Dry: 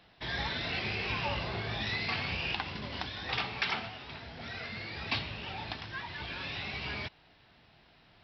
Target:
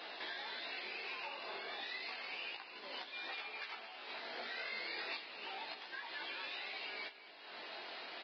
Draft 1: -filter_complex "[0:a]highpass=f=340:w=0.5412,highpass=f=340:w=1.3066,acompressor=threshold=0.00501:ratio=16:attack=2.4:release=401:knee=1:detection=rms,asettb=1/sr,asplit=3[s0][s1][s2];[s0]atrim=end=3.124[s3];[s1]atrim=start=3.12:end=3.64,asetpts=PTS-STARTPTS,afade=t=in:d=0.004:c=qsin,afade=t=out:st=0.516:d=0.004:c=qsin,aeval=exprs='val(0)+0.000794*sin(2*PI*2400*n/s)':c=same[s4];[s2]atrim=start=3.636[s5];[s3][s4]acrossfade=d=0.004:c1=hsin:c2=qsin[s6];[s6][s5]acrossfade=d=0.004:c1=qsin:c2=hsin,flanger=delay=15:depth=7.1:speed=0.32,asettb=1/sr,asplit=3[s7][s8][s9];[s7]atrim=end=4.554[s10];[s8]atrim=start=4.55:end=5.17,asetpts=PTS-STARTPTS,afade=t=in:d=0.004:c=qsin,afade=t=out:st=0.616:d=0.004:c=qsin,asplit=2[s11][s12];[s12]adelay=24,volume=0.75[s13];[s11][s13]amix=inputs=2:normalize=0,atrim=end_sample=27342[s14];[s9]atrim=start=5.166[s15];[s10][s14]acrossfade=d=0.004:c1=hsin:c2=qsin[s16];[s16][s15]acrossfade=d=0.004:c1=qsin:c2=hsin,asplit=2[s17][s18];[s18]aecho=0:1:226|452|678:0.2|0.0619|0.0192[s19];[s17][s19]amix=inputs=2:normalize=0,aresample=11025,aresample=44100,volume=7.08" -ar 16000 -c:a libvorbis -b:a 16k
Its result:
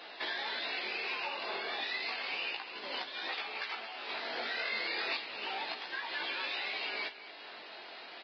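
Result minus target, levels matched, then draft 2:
compression: peak gain reduction -7.5 dB
-filter_complex "[0:a]highpass=f=340:w=0.5412,highpass=f=340:w=1.3066,acompressor=threshold=0.002:ratio=16:attack=2.4:release=401:knee=1:detection=rms,asettb=1/sr,asplit=3[s0][s1][s2];[s0]atrim=end=3.124[s3];[s1]atrim=start=3.12:end=3.64,asetpts=PTS-STARTPTS,afade=t=in:d=0.004:c=qsin,afade=t=out:st=0.516:d=0.004:c=qsin,aeval=exprs='val(0)+0.000794*sin(2*PI*2400*n/s)':c=same[s4];[s2]atrim=start=3.636[s5];[s3][s4]acrossfade=d=0.004:c1=hsin:c2=qsin[s6];[s6][s5]acrossfade=d=0.004:c1=qsin:c2=hsin,flanger=delay=15:depth=7.1:speed=0.32,asettb=1/sr,asplit=3[s7][s8][s9];[s7]atrim=end=4.554[s10];[s8]atrim=start=4.55:end=5.17,asetpts=PTS-STARTPTS,afade=t=in:d=0.004:c=qsin,afade=t=out:st=0.616:d=0.004:c=qsin,asplit=2[s11][s12];[s12]adelay=24,volume=0.75[s13];[s11][s13]amix=inputs=2:normalize=0,atrim=end_sample=27342[s14];[s9]atrim=start=5.166[s15];[s10][s14]acrossfade=d=0.004:c1=hsin:c2=qsin[s16];[s16][s15]acrossfade=d=0.004:c1=qsin:c2=hsin,asplit=2[s17][s18];[s18]aecho=0:1:226|452|678:0.2|0.0619|0.0192[s19];[s17][s19]amix=inputs=2:normalize=0,aresample=11025,aresample=44100,volume=7.08" -ar 16000 -c:a libvorbis -b:a 16k

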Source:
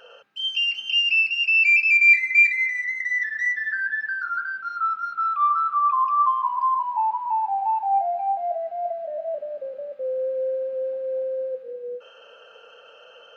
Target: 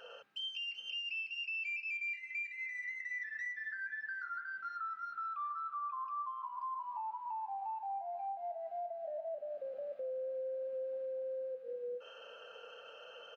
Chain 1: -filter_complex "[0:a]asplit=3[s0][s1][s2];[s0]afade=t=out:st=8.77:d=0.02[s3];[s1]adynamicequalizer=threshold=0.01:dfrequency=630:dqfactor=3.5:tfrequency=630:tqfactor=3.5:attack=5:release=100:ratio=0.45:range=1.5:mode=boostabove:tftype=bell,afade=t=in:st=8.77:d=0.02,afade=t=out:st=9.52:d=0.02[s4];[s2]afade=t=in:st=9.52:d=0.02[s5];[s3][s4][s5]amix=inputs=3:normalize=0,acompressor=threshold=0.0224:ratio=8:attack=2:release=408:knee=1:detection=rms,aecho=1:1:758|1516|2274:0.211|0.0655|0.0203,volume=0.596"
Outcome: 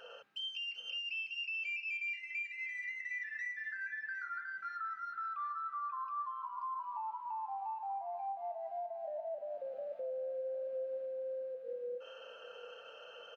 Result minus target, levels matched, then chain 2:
echo-to-direct +9.5 dB
-filter_complex "[0:a]asplit=3[s0][s1][s2];[s0]afade=t=out:st=8.77:d=0.02[s3];[s1]adynamicequalizer=threshold=0.01:dfrequency=630:dqfactor=3.5:tfrequency=630:tqfactor=3.5:attack=5:release=100:ratio=0.45:range=1.5:mode=boostabove:tftype=bell,afade=t=in:st=8.77:d=0.02,afade=t=out:st=9.52:d=0.02[s4];[s2]afade=t=in:st=9.52:d=0.02[s5];[s3][s4][s5]amix=inputs=3:normalize=0,acompressor=threshold=0.0224:ratio=8:attack=2:release=408:knee=1:detection=rms,aecho=1:1:758|1516:0.0708|0.0219,volume=0.596"

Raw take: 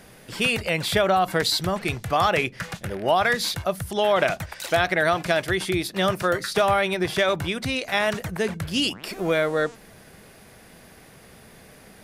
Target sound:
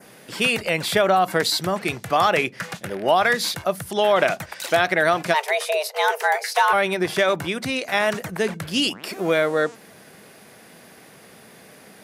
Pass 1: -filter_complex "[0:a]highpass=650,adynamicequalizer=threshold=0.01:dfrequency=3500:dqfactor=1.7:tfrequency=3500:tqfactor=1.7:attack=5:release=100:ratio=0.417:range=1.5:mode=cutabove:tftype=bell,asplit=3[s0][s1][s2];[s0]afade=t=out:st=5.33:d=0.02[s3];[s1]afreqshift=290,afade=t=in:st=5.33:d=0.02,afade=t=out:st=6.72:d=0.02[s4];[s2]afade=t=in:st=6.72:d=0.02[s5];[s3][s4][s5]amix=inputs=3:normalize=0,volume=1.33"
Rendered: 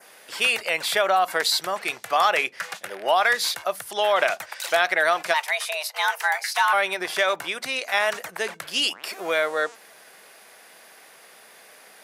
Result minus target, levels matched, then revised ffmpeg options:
125 Hz band -18.5 dB
-filter_complex "[0:a]highpass=170,adynamicequalizer=threshold=0.01:dfrequency=3500:dqfactor=1.7:tfrequency=3500:tqfactor=1.7:attack=5:release=100:ratio=0.417:range=1.5:mode=cutabove:tftype=bell,asplit=3[s0][s1][s2];[s0]afade=t=out:st=5.33:d=0.02[s3];[s1]afreqshift=290,afade=t=in:st=5.33:d=0.02,afade=t=out:st=6.72:d=0.02[s4];[s2]afade=t=in:st=6.72:d=0.02[s5];[s3][s4][s5]amix=inputs=3:normalize=0,volume=1.33"

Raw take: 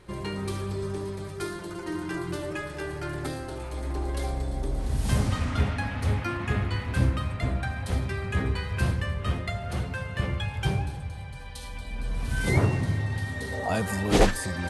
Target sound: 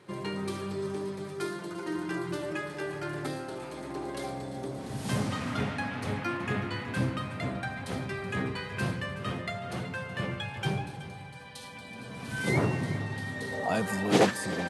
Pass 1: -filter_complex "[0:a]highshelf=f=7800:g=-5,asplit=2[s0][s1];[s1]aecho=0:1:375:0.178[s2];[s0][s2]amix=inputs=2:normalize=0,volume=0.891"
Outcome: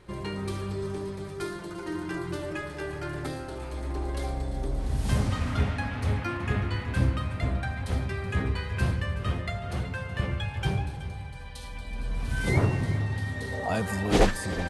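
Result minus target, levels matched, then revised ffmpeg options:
125 Hz band +4.0 dB
-filter_complex "[0:a]highpass=f=130:w=0.5412,highpass=f=130:w=1.3066,highshelf=f=7800:g=-5,asplit=2[s0][s1];[s1]aecho=0:1:375:0.178[s2];[s0][s2]amix=inputs=2:normalize=0,volume=0.891"

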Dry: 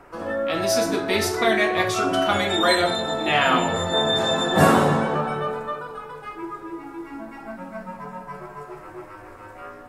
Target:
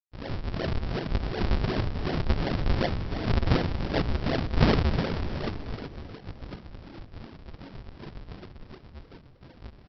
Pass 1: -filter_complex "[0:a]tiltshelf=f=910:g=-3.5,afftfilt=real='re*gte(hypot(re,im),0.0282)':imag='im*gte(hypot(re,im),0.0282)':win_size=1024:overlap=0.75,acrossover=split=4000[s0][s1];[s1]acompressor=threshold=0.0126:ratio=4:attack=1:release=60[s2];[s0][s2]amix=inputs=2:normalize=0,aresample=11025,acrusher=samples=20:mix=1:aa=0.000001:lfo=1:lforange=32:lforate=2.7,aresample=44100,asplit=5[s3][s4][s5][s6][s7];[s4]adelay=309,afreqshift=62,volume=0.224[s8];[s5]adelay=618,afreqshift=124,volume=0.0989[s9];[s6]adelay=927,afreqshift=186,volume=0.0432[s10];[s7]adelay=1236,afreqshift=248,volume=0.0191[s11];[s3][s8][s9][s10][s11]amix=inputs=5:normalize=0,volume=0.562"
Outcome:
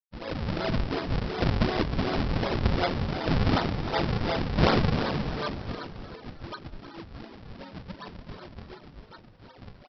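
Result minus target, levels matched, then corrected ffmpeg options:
decimation with a swept rate: distortion -13 dB
-filter_complex "[0:a]tiltshelf=f=910:g=-3.5,afftfilt=real='re*gte(hypot(re,im),0.0282)':imag='im*gte(hypot(re,im),0.0282)':win_size=1024:overlap=0.75,acrossover=split=4000[s0][s1];[s1]acompressor=threshold=0.0126:ratio=4:attack=1:release=60[s2];[s0][s2]amix=inputs=2:normalize=0,aresample=11025,acrusher=samples=42:mix=1:aa=0.000001:lfo=1:lforange=67.2:lforate=2.7,aresample=44100,asplit=5[s3][s4][s5][s6][s7];[s4]adelay=309,afreqshift=62,volume=0.224[s8];[s5]adelay=618,afreqshift=124,volume=0.0989[s9];[s6]adelay=927,afreqshift=186,volume=0.0432[s10];[s7]adelay=1236,afreqshift=248,volume=0.0191[s11];[s3][s8][s9][s10][s11]amix=inputs=5:normalize=0,volume=0.562"

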